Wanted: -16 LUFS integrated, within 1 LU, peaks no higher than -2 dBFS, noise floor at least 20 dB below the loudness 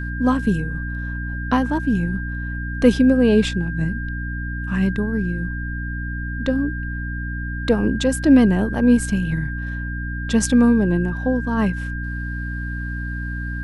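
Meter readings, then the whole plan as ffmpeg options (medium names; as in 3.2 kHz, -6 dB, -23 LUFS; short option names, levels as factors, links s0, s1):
hum 60 Hz; highest harmonic 300 Hz; hum level -25 dBFS; steady tone 1.6 kHz; tone level -31 dBFS; loudness -21.0 LUFS; peak level -2.5 dBFS; loudness target -16.0 LUFS
-> -af "bandreject=f=60:t=h:w=6,bandreject=f=120:t=h:w=6,bandreject=f=180:t=h:w=6,bandreject=f=240:t=h:w=6,bandreject=f=300:t=h:w=6"
-af "bandreject=f=1600:w=30"
-af "volume=1.78,alimiter=limit=0.794:level=0:latency=1"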